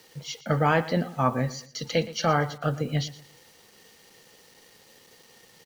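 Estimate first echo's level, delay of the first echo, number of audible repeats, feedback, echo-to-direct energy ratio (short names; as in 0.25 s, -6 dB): -17.0 dB, 0.117 s, 2, 31%, -16.5 dB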